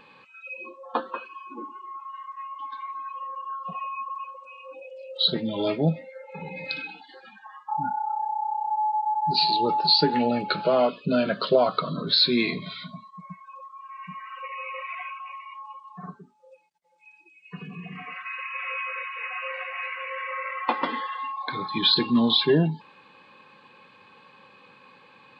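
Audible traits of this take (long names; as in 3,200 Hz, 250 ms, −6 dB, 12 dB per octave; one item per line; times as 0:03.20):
background noise floor −55 dBFS
spectral slope −2.5 dB per octave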